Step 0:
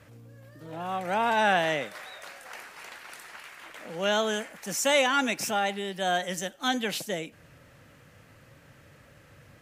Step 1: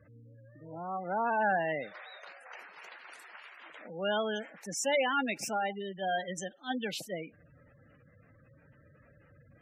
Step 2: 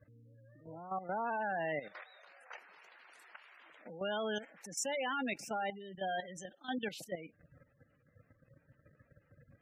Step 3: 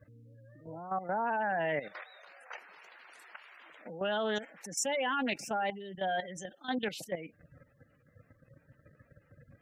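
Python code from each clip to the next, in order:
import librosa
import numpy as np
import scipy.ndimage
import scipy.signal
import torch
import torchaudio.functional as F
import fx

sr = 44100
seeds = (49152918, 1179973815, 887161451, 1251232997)

y1 = fx.spec_gate(x, sr, threshold_db=-15, keep='strong')
y1 = fx.attack_slew(y1, sr, db_per_s=290.0)
y1 = y1 * librosa.db_to_amplitude(-4.5)
y2 = fx.level_steps(y1, sr, step_db=12)
y3 = fx.doppler_dist(y2, sr, depth_ms=0.15)
y3 = y3 * librosa.db_to_amplitude(4.5)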